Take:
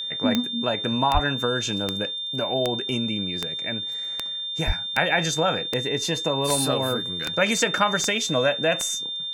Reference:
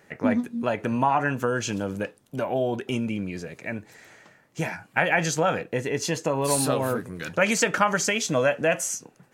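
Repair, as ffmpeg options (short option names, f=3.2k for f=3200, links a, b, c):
-filter_complex "[0:a]adeclick=t=4,bandreject=f=3.6k:w=30,asplit=3[a][b][c];[a]afade=t=out:st=1.13:d=0.02[d];[b]highpass=f=140:w=0.5412,highpass=f=140:w=1.3066,afade=t=in:st=1.13:d=0.02,afade=t=out:st=1.25:d=0.02[e];[c]afade=t=in:st=1.25:d=0.02[f];[d][e][f]amix=inputs=3:normalize=0,asplit=3[g][h][i];[g]afade=t=out:st=4.66:d=0.02[j];[h]highpass=f=140:w=0.5412,highpass=f=140:w=1.3066,afade=t=in:st=4.66:d=0.02,afade=t=out:st=4.78:d=0.02[k];[i]afade=t=in:st=4.78:d=0.02[l];[j][k][l]amix=inputs=3:normalize=0"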